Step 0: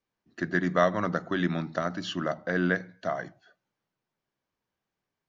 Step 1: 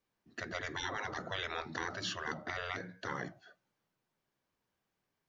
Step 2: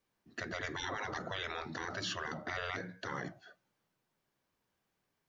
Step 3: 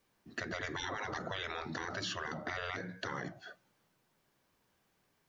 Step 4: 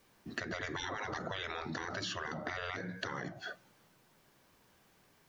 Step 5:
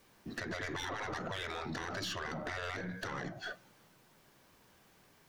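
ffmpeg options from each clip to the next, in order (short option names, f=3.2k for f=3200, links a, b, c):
-af "afftfilt=real='re*lt(hypot(re,im),0.0708)':imag='im*lt(hypot(re,im),0.0708)':win_size=1024:overlap=0.75,volume=1dB"
-af "alimiter=level_in=6dB:limit=-24dB:level=0:latency=1:release=26,volume=-6dB,volume=2dB"
-af "acompressor=threshold=-45dB:ratio=3,volume=7dB"
-af "acompressor=threshold=-46dB:ratio=4,volume=8.5dB"
-af "aeval=exprs='(tanh(63.1*val(0)+0.25)-tanh(0.25))/63.1':c=same,volume=3dB"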